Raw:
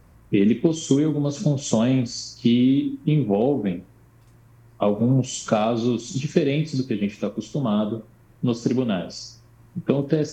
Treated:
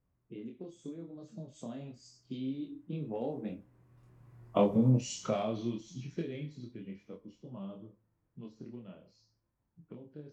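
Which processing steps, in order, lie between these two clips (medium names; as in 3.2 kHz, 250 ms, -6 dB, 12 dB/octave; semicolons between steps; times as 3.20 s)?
Doppler pass-by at 4.51 s, 20 m/s, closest 7.8 m; chorus 0.83 Hz, depth 4.3 ms; tape noise reduction on one side only decoder only; trim -2 dB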